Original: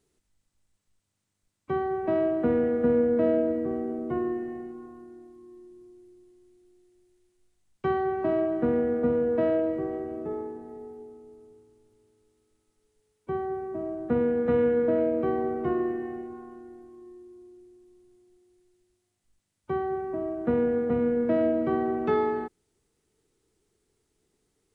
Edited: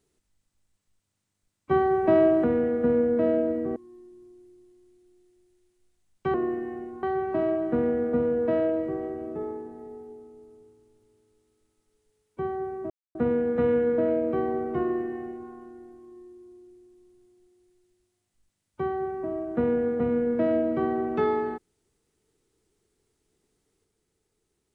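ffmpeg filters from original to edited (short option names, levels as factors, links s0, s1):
-filter_complex "[0:a]asplit=8[s0][s1][s2][s3][s4][s5][s6][s7];[s0]atrim=end=1.712[s8];[s1]atrim=start=1.708:end=2.442,asetpts=PTS-STARTPTS,volume=2[s9];[s2]atrim=start=2.438:end=3.762[s10];[s3]atrim=start=5.348:end=7.932[s11];[s4]atrim=start=15.708:end=16.402[s12];[s5]atrim=start=7.928:end=13.8,asetpts=PTS-STARTPTS,afade=t=out:st=5.868:d=0.004:c=hsin[s13];[s6]atrim=start=13.8:end=14.05,asetpts=PTS-STARTPTS,volume=0[s14];[s7]atrim=start=14.05,asetpts=PTS-STARTPTS,afade=t=in:d=0.004:c=hsin[s15];[s8][s9]acrossfade=d=0.004:c1=hsin:c2=hsin[s16];[s16][s10]acrossfade=d=0.004:c1=hsin:c2=hsin[s17];[s17][s11]acrossfade=d=0.004:c1=hsin:c2=hsin[s18];[s18][s12]acrossfade=d=0.004:c1=hsin:c2=hsin[s19];[s13][s14][s15]concat=n=3:v=0:a=1[s20];[s19][s20]acrossfade=d=0.004:c1=hsin:c2=hsin"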